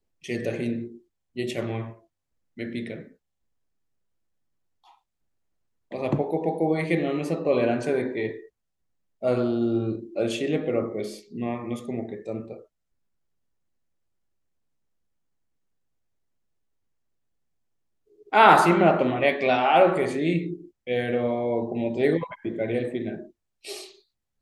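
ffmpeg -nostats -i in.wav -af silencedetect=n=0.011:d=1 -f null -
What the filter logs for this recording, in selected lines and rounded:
silence_start: 3.08
silence_end: 5.92 | silence_duration: 2.84
silence_start: 12.61
silence_end: 18.32 | silence_duration: 5.71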